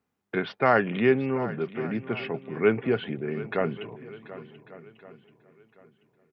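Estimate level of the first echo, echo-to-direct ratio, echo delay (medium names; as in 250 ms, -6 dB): -16.0 dB, -14.0 dB, 734 ms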